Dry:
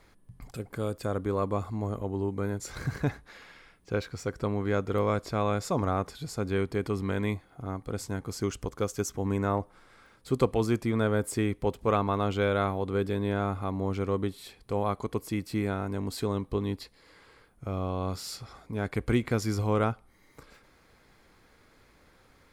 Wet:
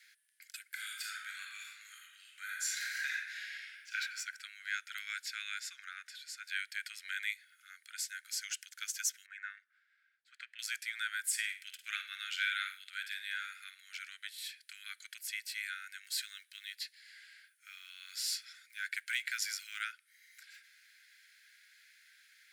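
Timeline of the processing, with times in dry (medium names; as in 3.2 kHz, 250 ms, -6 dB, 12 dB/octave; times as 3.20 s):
0.70–3.96 s: reverb throw, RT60 1.1 s, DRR -2.5 dB
5.60–6.44 s: tilt EQ -2.5 dB/octave
9.26–10.59 s: auto-wah 550–1700 Hz, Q 2.4, up, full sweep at -23.5 dBFS
11.27–13.82 s: flutter echo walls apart 8.9 m, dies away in 0.33 s
16.04–19.83 s: short-mantissa float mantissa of 6-bit
whole clip: steep high-pass 1.5 kHz 96 dB/octave; trim +3.5 dB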